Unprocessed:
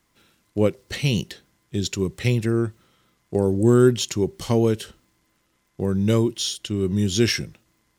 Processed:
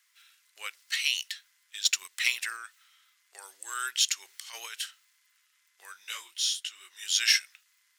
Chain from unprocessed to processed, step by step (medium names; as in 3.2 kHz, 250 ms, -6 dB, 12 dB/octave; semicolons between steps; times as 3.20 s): high-pass 1.5 kHz 24 dB/octave; 1.85–2.57 s: waveshaping leveller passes 1; 4.25–4.73 s: compressor with a negative ratio -45 dBFS, ratio -1; 5.93–7.01 s: detune thickener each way 57 cents -> 40 cents; trim +2 dB